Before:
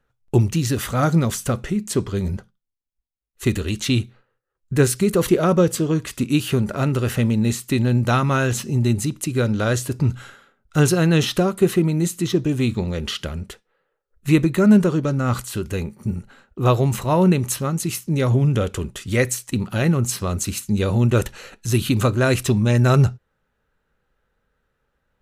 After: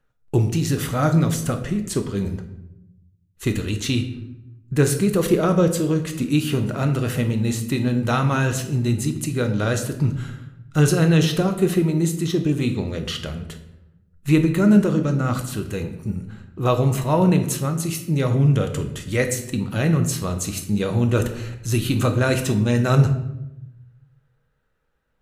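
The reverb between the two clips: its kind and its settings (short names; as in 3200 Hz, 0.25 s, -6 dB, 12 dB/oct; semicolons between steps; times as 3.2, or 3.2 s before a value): shoebox room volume 270 m³, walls mixed, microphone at 0.58 m; gain -2.5 dB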